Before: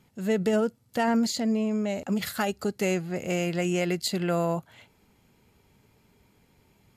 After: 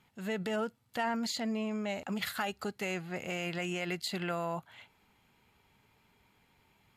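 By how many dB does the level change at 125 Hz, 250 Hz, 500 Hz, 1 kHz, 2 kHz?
−10.0, −10.0, −9.5, −5.0, −3.0 decibels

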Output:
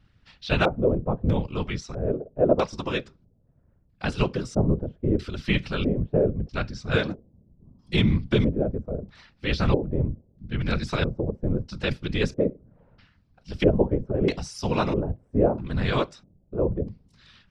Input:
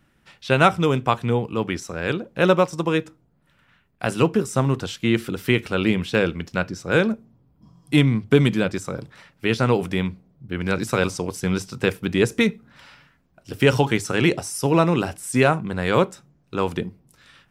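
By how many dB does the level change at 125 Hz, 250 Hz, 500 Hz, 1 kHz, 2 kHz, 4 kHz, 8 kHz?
−2.5 dB, −4.5 dB, −3.5 dB, −8.0 dB, −8.0 dB, −4.5 dB, below −10 dB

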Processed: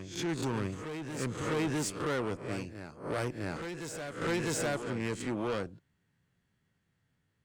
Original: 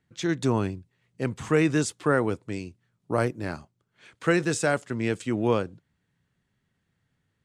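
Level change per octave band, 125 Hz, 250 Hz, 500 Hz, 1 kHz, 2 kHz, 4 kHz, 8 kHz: −7.5, −8.0, −8.0, −7.0, −7.5, −2.5, −3.5 decibels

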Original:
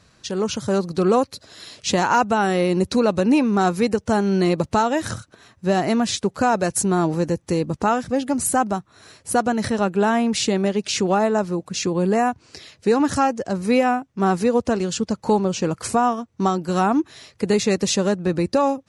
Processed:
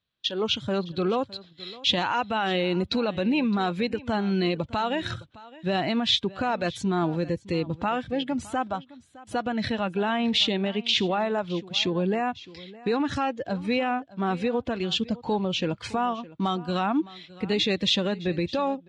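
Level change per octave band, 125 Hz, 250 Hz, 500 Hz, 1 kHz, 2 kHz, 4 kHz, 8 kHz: −6.0, −6.5, −7.5, −7.5, −3.5, +4.0, −16.5 decibels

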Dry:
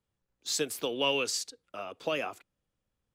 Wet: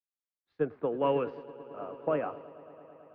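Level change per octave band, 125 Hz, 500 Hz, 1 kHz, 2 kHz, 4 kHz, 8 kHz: +6.5 dB, +3.0 dB, +2.5 dB, −11.0 dB, below −20 dB, below −40 dB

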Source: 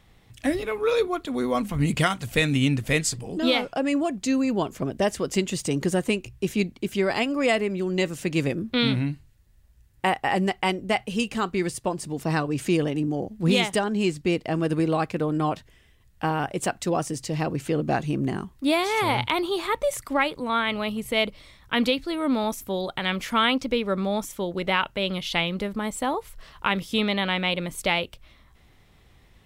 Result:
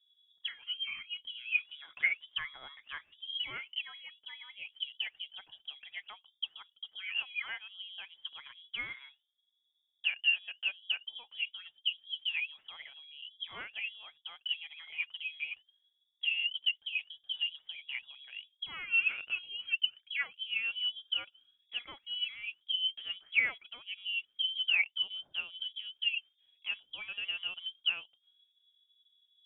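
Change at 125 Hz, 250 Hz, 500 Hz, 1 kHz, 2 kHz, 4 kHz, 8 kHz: below −40 dB, below −40 dB, below −35 dB, −27.5 dB, −5.5 dB, −2.5 dB, below −40 dB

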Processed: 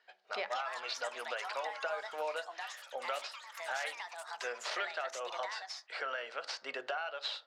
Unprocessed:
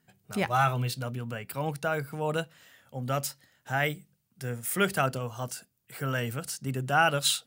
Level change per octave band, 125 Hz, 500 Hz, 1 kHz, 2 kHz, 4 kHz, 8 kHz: below −40 dB, −8.0 dB, −8.5 dB, −7.0 dB, −6.5 dB, −13.5 dB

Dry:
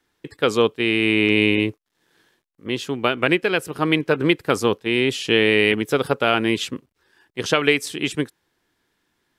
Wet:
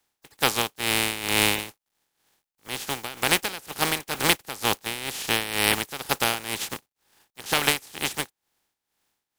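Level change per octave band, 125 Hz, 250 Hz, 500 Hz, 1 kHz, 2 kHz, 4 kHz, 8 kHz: −8.0, −13.0, −12.5, −2.0, −5.0, −1.0, +8.5 decibels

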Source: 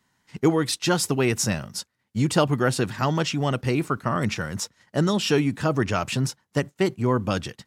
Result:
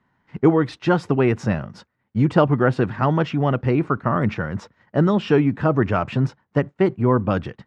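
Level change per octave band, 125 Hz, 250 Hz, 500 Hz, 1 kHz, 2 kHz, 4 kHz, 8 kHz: +4.5 dB, +4.5 dB, +4.5 dB, +4.0 dB, +1.0 dB, −9.0 dB, below −20 dB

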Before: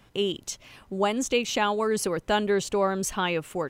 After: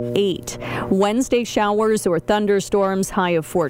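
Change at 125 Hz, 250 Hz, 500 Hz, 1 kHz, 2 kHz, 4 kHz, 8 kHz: +10.5, +9.5, +8.0, +6.0, +4.0, +2.0, +3.0 decibels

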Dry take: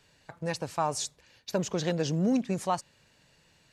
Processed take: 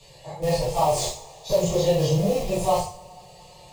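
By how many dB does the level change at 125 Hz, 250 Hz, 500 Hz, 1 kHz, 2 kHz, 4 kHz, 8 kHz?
+8.0, +1.0, +11.0, +7.5, +1.0, +7.0, +6.0 decibels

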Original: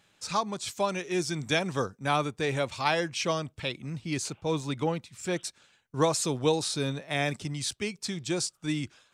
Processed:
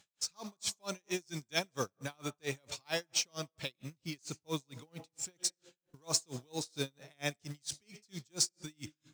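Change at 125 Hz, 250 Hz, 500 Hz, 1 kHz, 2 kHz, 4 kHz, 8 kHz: −11.5, −12.5, −13.0, −16.0, −9.5, −4.5, −1.5 decibels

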